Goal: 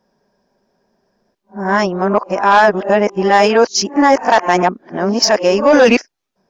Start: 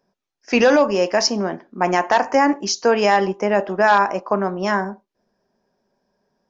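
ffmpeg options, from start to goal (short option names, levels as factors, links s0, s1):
-af "areverse,acontrast=32,volume=1.12"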